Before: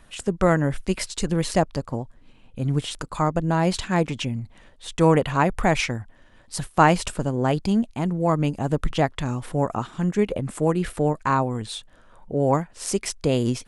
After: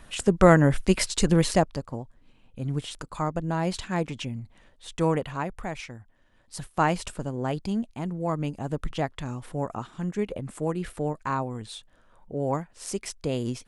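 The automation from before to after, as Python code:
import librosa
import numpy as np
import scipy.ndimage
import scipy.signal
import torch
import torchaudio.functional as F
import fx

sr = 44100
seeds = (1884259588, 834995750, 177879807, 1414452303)

y = fx.gain(x, sr, db=fx.line((1.36, 3.0), (1.86, -6.0), (5.0, -6.0), (5.8, -15.0), (6.67, -7.0)))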